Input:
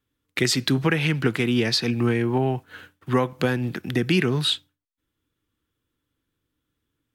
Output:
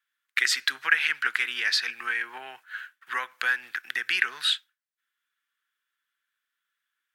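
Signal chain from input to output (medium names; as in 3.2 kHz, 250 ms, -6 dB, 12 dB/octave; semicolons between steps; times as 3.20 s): resonant high-pass 1.6 kHz, resonance Q 3.3; trim -3 dB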